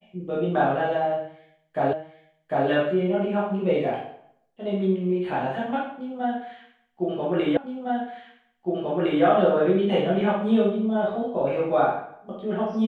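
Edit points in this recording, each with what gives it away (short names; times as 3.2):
1.93 repeat of the last 0.75 s
7.57 repeat of the last 1.66 s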